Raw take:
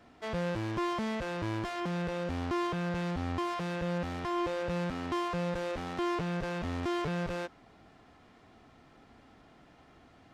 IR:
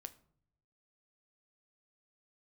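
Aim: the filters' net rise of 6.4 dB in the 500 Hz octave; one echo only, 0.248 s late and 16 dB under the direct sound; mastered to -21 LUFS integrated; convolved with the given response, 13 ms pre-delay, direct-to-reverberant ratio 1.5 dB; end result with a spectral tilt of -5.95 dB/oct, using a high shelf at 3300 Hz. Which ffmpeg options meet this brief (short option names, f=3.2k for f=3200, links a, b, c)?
-filter_complex "[0:a]equalizer=f=500:t=o:g=8,highshelf=f=3.3k:g=-5,aecho=1:1:248:0.158,asplit=2[a][b];[1:a]atrim=start_sample=2205,adelay=13[c];[b][c]afir=irnorm=-1:irlink=0,volume=4dB[d];[a][d]amix=inputs=2:normalize=0,volume=7dB"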